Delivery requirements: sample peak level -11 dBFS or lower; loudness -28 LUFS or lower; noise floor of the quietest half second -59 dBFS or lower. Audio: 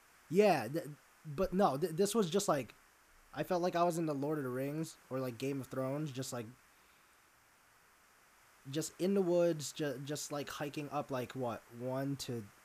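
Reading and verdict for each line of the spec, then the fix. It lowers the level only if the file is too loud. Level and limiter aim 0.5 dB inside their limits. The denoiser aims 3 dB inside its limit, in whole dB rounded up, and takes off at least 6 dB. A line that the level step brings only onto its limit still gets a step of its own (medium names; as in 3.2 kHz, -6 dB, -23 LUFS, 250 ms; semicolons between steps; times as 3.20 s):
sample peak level -17.5 dBFS: pass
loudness -36.5 LUFS: pass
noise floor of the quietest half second -67 dBFS: pass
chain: none needed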